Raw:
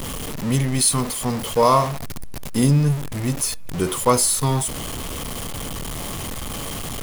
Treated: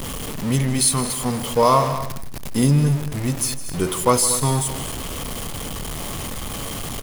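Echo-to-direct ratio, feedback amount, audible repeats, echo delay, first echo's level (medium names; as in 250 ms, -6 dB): -11.0 dB, no regular repeats, 3, 157 ms, -14.5 dB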